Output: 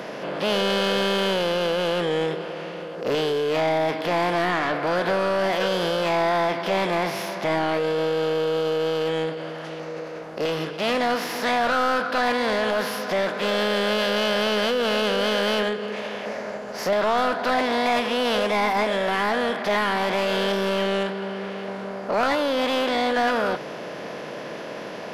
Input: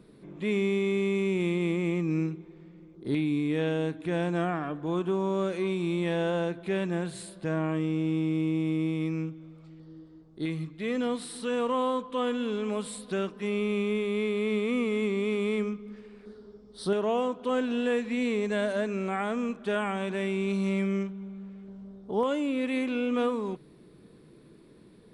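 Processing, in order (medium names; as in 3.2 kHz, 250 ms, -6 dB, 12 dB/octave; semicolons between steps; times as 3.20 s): spectral levelling over time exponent 0.6; overdrive pedal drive 18 dB, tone 2.2 kHz, clips at -13.5 dBFS; formant shift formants +5 st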